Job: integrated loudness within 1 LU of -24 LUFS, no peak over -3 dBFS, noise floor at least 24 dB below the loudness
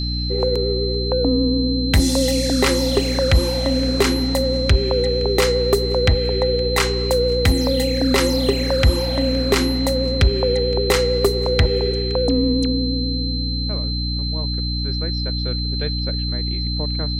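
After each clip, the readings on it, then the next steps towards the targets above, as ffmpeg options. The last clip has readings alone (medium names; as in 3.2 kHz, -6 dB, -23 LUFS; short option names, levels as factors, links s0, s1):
hum 60 Hz; highest harmonic 300 Hz; hum level -21 dBFS; steady tone 4.1 kHz; tone level -26 dBFS; loudness -19.0 LUFS; peak level -5.5 dBFS; loudness target -24.0 LUFS
-> -af "bandreject=f=60:t=h:w=4,bandreject=f=120:t=h:w=4,bandreject=f=180:t=h:w=4,bandreject=f=240:t=h:w=4,bandreject=f=300:t=h:w=4"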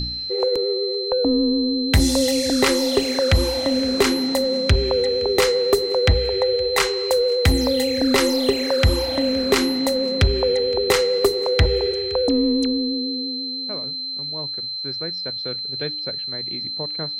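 hum not found; steady tone 4.1 kHz; tone level -26 dBFS
-> -af "bandreject=f=4100:w=30"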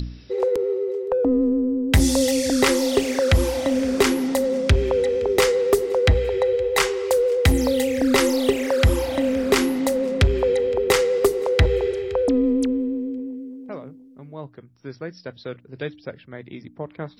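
steady tone not found; loudness -20.5 LUFS; peak level -6.5 dBFS; loudness target -24.0 LUFS
-> -af "volume=0.668"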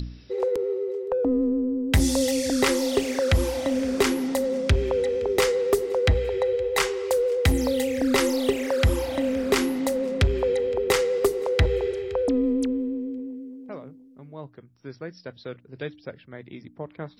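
loudness -24.0 LUFS; peak level -10.0 dBFS; noise floor -52 dBFS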